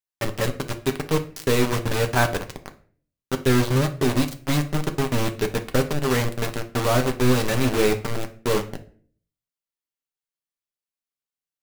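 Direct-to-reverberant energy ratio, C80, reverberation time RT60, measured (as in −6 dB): 5.5 dB, 18.5 dB, 0.45 s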